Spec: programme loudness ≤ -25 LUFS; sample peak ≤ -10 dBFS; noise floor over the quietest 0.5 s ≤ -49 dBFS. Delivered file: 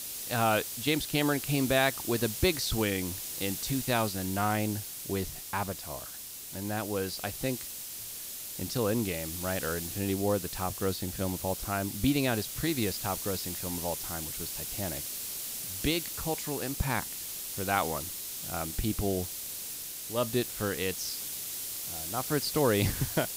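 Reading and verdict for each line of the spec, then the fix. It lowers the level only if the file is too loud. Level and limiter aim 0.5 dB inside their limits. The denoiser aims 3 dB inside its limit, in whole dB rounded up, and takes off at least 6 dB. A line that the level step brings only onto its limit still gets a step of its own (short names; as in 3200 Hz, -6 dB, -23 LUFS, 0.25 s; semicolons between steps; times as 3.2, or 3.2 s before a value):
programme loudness -31.0 LUFS: OK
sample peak -11.5 dBFS: OK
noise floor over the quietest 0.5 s -43 dBFS: fail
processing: denoiser 9 dB, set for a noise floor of -43 dBFS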